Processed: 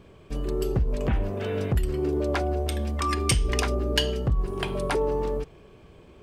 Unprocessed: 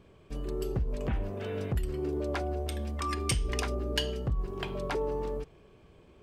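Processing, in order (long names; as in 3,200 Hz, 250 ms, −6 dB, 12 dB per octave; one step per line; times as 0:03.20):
0:04.46–0:04.96: parametric band 9,500 Hz +12.5 dB 0.29 octaves
level +6.5 dB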